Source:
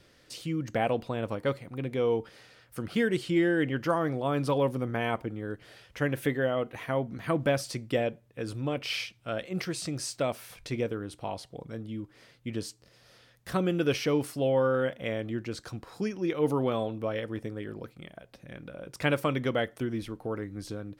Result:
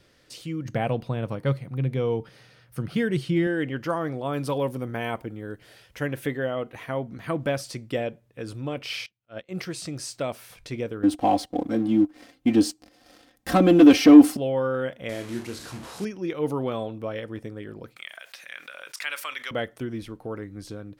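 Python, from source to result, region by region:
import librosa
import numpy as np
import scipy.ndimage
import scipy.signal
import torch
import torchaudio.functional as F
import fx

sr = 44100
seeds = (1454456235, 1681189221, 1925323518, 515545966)

y = fx.chain(x, sr, fx.peak_eq(hz=140.0, db=12.5, octaves=0.69),
    fx.notch(hz=7400.0, q=7.4), at=(0.65, 3.47))
y = fx.chain(y, sr, fx.high_shelf(hz=10000.0, db=10.0),
    fx.notch(hz=1200.0, q=17.0), at=(4.33, 6.06))
y = fx.chain(y, sr, fx.lowpass(hz=6700.0, slope=12),
    fx.auto_swell(attack_ms=125.0),
    fx.upward_expand(threshold_db=-48.0, expansion=2.5), at=(9.06, 9.49))
y = fx.chain(y, sr, fx.comb(ms=3.8, depth=0.73),
    fx.leveller(passes=2),
    fx.small_body(hz=(300.0, 700.0), ring_ms=40, db=13), at=(11.03, 14.37))
y = fx.chain(y, sr, fx.delta_mod(bps=64000, step_db=-36.0),
    fx.highpass(hz=53.0, slope=12),
    fx.room_flutter(wall_m=5.2, rt60_s=0.24), at=(15.09, 16.05))
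y = fx.chain(y, sr, fx.cheby1_highpass(hz=1800.0, order=2),
    fx.env_flatten(amount_pct=50), at=(17.96, 19.51))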